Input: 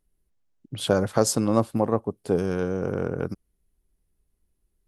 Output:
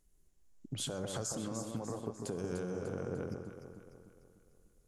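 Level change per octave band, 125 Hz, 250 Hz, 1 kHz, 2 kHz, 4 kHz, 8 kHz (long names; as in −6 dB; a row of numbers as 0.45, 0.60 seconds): −12.5, −14.5, −17.0, −14.0, −10.0, −9.5 decibels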